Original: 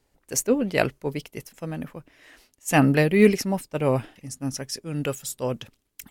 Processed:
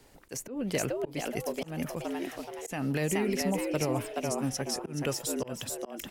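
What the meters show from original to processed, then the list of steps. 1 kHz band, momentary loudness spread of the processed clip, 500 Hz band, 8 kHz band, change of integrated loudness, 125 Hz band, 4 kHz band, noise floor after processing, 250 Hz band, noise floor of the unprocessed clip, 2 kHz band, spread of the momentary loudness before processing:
−7.0 dB, 9 LU, −8.0 dB, −4.0 dB, −8.5 dB, −8.5 dB, −3.0 dB, −54 dBFS, −8.0 dB, −71 dBFS, −9.0 dB, 17 LU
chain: brickwall limiter −16.5 dBFS, peak gain reduction 11.5 dB
downward compressor 5 to 1, threshold −26 dBFS, peak gain reduction 6 dB
on a send: echo with shifted repeats 425 ms, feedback 34%, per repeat +110 Hz, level −4 dB
on the sum: volume swells 235 ms
multiband upward and downward compressor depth 40%

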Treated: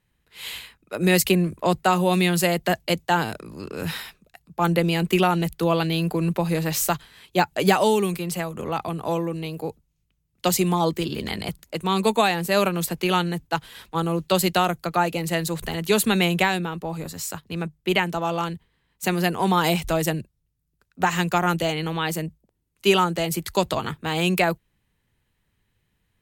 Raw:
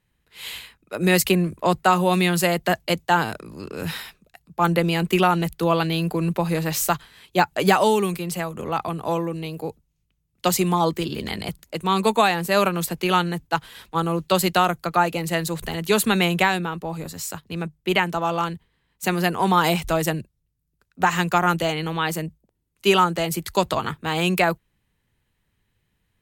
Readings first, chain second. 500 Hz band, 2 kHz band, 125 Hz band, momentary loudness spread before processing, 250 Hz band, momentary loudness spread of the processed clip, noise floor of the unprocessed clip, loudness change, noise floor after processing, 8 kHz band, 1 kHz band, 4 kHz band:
−0.5 dB, −2.0 dB, 0.0 dB, 13 LU, 0.0 dB, 12 LU, −73 dBFS, −1.0 dB, −73 dBFS, 0.0 dB, −2.5 dB, −0.5 dB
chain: dynamic equaliser 1,200 Hz, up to −4 dB, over −32 dBFS, Q 1.2

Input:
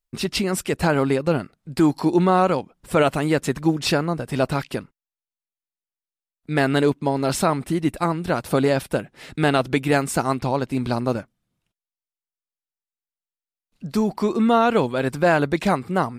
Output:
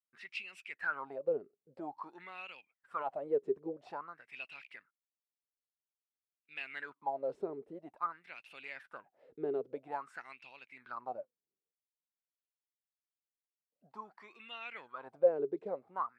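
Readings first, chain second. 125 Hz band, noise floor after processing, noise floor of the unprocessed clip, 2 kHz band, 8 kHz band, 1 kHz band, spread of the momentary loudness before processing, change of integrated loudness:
−37.5 dB, below −85 dBFS, below −85 dBFS, −16.5 dB, below −35 dB, −18.0 dB, 8 LU, −18.0 dB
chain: LFO wah 0.5 Hz 400–2,700 Hz, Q 12
level −3.5 dB

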